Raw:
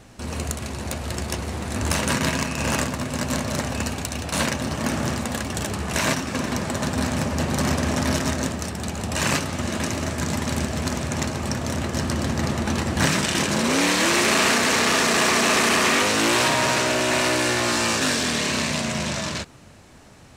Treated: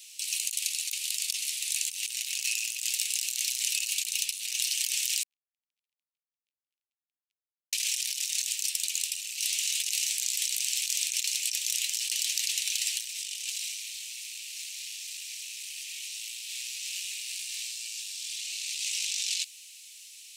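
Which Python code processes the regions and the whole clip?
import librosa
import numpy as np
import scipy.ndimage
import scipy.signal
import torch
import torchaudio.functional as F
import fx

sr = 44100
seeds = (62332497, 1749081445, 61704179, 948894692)

y = fx.chain(x, sr, fx.cheby_ripple(hz=540.0, ripple_db=6),
    fx.over_compress(threshold_db=-32.0, ratio=-1.0), at=(5.23, 7.73))
y = scipy.signal.sosfilt(scipy.signal.butter(8, 2500.0, 'highpass', fs=sr, output='sos'), y)
y = fx.high_shelf(y, sr, hz=8800.0, db=10.5)
y = fx.over_compress(y, sr, threshold_db=-34.0, ratio=-1.0)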